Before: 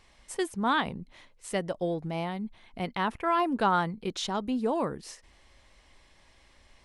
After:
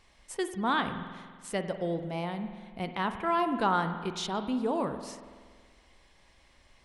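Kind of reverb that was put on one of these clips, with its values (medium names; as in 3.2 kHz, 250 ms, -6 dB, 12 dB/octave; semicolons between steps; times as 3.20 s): spring tank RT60 1.7 s, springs 47 ms, chirp 45 ms, DRR 8.5 dB; trim -2 dB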